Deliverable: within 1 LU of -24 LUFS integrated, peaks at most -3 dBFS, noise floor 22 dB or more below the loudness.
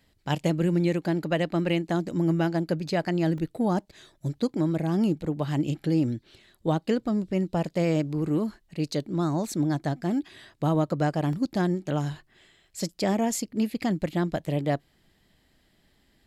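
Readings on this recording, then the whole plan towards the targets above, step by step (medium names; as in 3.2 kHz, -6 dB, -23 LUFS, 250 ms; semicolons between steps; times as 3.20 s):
dropouts 2; longest dropout 2.1 ms; loudness -27.5 LUFS; peak level -13.5 dBFS; loudness target -24.0 LUFS
-> interpolate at 3.38/11.33 s, 2.1 ms; trim +3.5 dB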